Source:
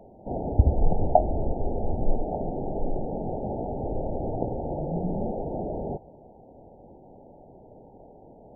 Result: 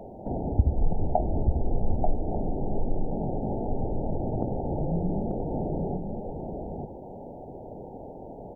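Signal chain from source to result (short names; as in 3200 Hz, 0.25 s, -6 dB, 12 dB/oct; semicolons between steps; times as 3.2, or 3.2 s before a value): dynamic EQ 590 Hz, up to -6 dB, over -42 dBFS, Q 1; compressor 1.5:1, threshold -43 dBFS, peak gain reduction 11.5 dB; echo 0.888 s -5 dB; gain +7.5 dB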